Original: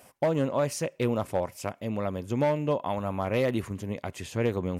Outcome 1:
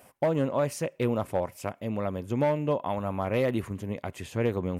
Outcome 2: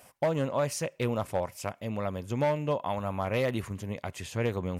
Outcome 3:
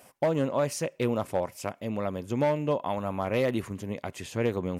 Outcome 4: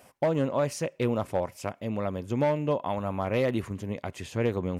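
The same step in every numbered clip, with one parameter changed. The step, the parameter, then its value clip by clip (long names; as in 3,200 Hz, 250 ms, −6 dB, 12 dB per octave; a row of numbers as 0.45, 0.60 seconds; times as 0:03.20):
parametric band, centre frequency: 5,600, 310, 66, 16,000 Hertz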